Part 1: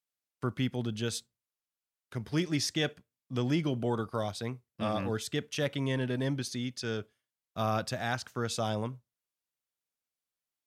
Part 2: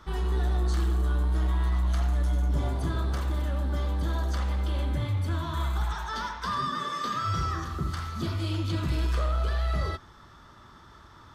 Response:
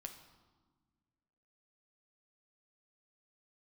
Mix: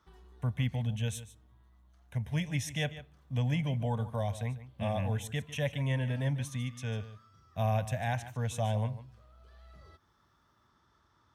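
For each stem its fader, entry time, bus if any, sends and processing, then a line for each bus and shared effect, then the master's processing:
-0.5 dB, 0.00 s, send -16 dB, echo send -14 dB, peaking EQ 63 Hz +12.5 dB 1.8 oct; static phaser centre 1.3 kHz, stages 6
-17.5 dB, 0.00 s, no send, no echo send, compression 6:1, threshold -33 dBFS, peak gain reduction 10 dB; auto duck -9 dB, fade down 1.30 s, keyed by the first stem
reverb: on, RT60 1.4 s, pre-delay 7 ms
echo: delay 148 ms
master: high-pass 55 Hz; peaking EQ 5.8 kHz +3.5 dB 0.28 oct

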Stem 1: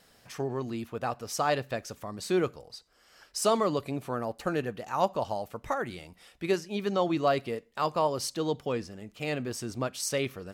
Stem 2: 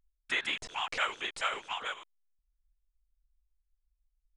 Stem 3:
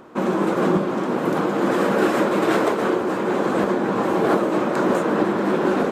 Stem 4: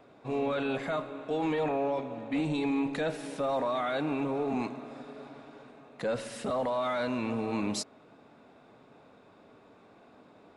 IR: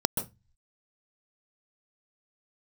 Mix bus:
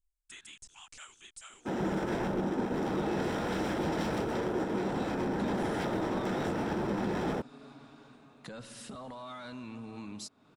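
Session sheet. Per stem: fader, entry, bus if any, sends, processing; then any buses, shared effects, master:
mute
-7.0 dB, 0.00 s, bus A, no send, graphic EQ 125/250/500/1000/2000/4000/8000 Hz -3/-3/-6/-6/-11/-7/+10 dB
-6.5 dB, 1.50 s, bus A, send -13.5 dB, treble shelf 11 kHz -9 dB; wavefolder -19.5 dBFS; upward expansion 2.5:1, over -34 dBFS
+1.5 dB, 2.45 s, bus A, no send, peaking EQ 2.1 kHz -6.5 dB 0.75 oct
bus A: 0.0 dB, peaking EQ 550 Hz -11.5 dB 1.5 oct; compression 2.5:1, threshold -45 dBFS, peak gain reduction 11.5 dB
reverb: on, RT60 0.20 s, pre-delay 123 ms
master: none

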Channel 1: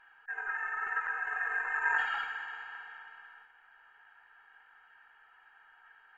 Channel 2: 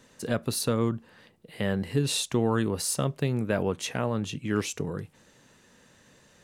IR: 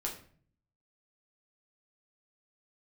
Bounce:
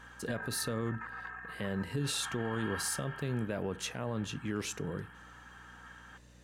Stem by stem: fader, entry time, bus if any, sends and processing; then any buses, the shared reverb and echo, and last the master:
-1.5 dB, 0.00 s, no send, compressor with a negative ratio -43 dBFS, ratio -1; small resonant body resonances 310/1100/3200 Hz, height 13 dB, ringing for 40 ms
-5.5 dB, 0.00 s, send -19 dB, hum 60 Hz, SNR 24 dB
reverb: on, RT60 0.50 s, pre-delay 6 ms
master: peak limiter -24.5 dBFS, peak gain reduction 7 dB

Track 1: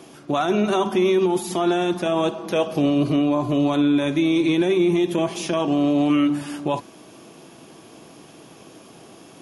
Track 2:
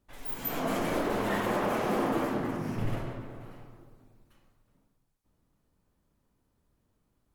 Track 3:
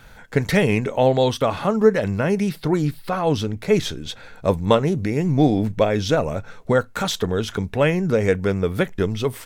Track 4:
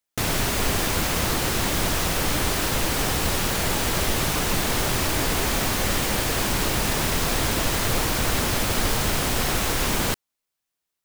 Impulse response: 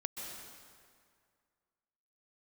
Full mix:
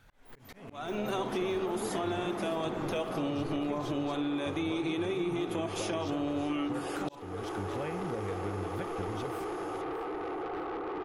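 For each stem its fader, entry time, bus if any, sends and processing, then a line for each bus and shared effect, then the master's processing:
-5.0 dB, 0.40 s, no bus, no send, echo send -16 dB, bass shelf 430 Hz -5 dB; band-stop 5.7 kHz, Q 20
-3.5 dB, 0.00 s, bus A, no send, echo send -5 dB, low-pass 3.5 kHz 6 dB/octave
-15.5 dB, 0.00 s, no bus, no send, echo send -15 dB, peaking EQ 96 Hz +10 dB 0.22 oct; compression, threshold -17 dBFS, peak gain reduction 8.5 dB
-4.5 dB, 1.05 s, bus A, no send, no echo send, FFT band-pass 280–1500 Hz; bass shelf 360 Hz +10 dB; comb 2.5 ms, depth 99%
bus A: 0.0 dB, saturation -29 dBFS, distortion -10 dB; compression 2:1, threshold -38 dBFS, peak gain reduction 4.5 dB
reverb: none
echo: feedback delay 610 ms, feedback 34%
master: slow attack 457 ms; compression 3:1, threshold -31 dBFS, peak gain reduction 7.5 dB

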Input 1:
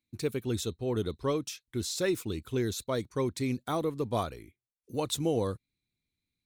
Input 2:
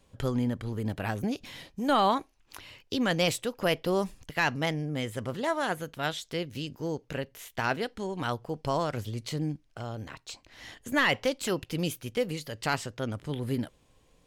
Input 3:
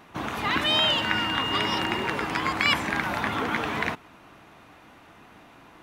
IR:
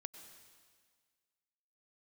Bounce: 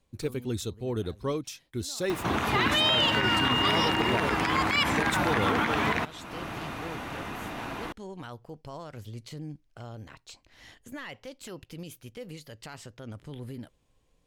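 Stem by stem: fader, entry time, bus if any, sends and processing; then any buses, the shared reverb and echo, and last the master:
-1.0 dB, 0.00 s, no send, none
-9.5 dB, 0.00 s, no send, gain riding within 4 dB 0.5 s; peak limiter -22 dBFS, peak gain reduction 9 dB; auto duck -13 dB, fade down 0.85 s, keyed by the first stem
+3.0 dB, 2.10 s, no send, upward compressor, threshold -29 dBFS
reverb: none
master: bass shelf 86 Hz +5 dB; peak limiter -15 dBFS, peak gain reduction 10.5 dB

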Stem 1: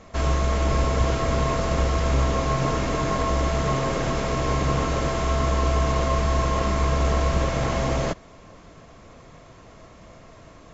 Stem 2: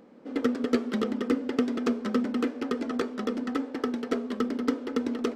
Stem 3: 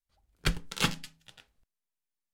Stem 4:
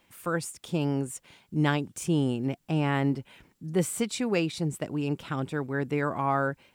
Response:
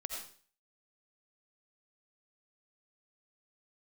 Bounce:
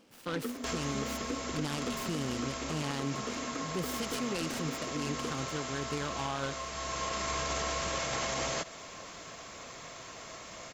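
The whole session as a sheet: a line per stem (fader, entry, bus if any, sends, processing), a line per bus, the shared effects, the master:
+2.0 dB, 0.50 s, send -19 dB, tilt EQ +3.5 dB/octave; compression 4:1, threshold -29 dBFS, peak gain reduction 7 dB; auto duck -12 dB, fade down 1.25 s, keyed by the fourth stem
-10.5 dB, 0.00 s, no send, vibrato 3.9 Hz 44 cents
-9.0 dB, 1.10 s, no send, compression, threshold -34 dBFS, peak gain reduction 12.5 dB
-7.5 dB, 0.00 s, send -19 dB, high-pass 55 Hz; peaking EQ 3 kHz +13 dB 0.41 oct; delay time shaken by noise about 1.9 kHz, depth 0.066 ms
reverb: on, RT60 0.45 s, pre-delay 45 ms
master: peak limiter -24.5 dBFS, peak gain reduction 9 dB

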